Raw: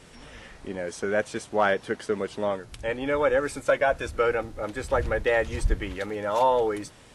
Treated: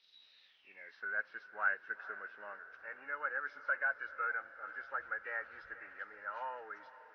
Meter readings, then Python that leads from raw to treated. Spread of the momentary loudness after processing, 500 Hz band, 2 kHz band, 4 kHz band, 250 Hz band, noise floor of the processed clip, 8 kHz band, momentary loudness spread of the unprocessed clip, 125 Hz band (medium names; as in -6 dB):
14 LU, -26.5 dB, -5.5 dB, under -20 dB, under -30 dB, -66 dBFS, under -35 dB, 11 LU, under -40 dB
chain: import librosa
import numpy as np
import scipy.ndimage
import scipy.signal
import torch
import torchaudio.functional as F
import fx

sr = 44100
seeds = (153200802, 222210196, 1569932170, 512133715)

y = fx.freq_compress(x, sr, knee_hz=1900.0, ratio=1.5)
y = fx.echo_diffused(y, sr, ms=468, feedback_pct=59, wet_db=-15.0)
y = fx.filter_sweep_bandpass(y, sr, from_hz=3800.0, to_hz=1500.0, start_s=0.44, end_s=1.05, q=7.1)
y = y * 10.0 ** (-2.0 / 20.0)